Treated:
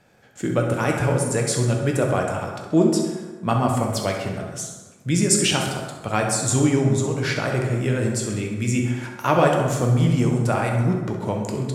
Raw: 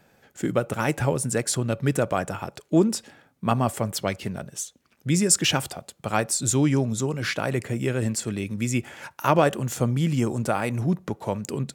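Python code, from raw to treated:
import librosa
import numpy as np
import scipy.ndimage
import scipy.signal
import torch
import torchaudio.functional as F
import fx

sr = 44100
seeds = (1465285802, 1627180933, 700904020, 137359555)

y = scipy.signal.sosfilt(scipy.signal.butter(2, 11000.0, 'lowpass', fs=sr, output='sos'), x)
y = fx.echo_feedback(y, sr, ms=66, feedback_pct=55, wet_db=-12.0)
y = fx.rev_plate(y, sr, seeds[0], rt60_s=1.4, hf_ratio=0.5, predelay_ms=0, drr_db=1.0)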